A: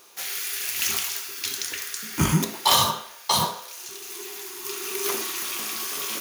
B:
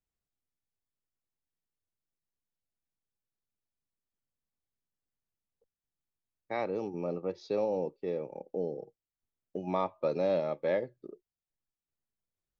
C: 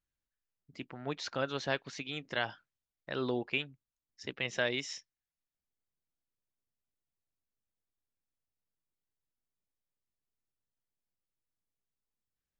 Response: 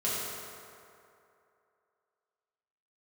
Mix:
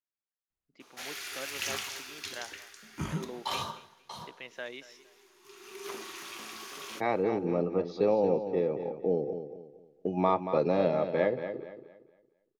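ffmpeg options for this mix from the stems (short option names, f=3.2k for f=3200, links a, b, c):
-filter_complex "[0:a]adelay=800,volume=8.5dB,afade=t=out:st=2.02:d=0.71:silence=0.334965,afade=t=out:st=3.76:d=0.28:silence=0.446684,afade=t=in:st=5.4:d=0.78:silence=0.237137,asplit=2[a][b];[b]volume=-24dB[c];[1:a]bandreject=f=570:w=12,dynaudnorm=f=280:g=11:m=8.5dB,adelay=500,volume=-3dB,asplit=2[d][e];[e]volume=-9.5dB[f];[2:a]highpass=260,volume=-8dB,asplit=2[g][h];[h]volume=-17.5dB[i];[c][f][i]amix=inputs=3:normalize=0,aecho=0:1:230|460|690|920|1150:1|0.32|0.102|0.0328|0.0105[j];[a][d][g][j]amix=inputs=4:normalize=0,aemphasis=mode=reproduction:type=50fm"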